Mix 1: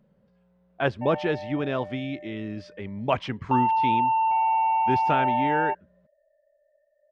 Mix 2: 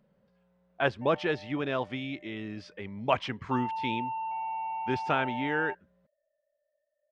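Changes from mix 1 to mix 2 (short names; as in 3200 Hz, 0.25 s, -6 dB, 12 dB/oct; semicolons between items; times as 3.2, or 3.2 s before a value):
background -10.5 dB; master: add low shelf 460 Hz -6.5 dB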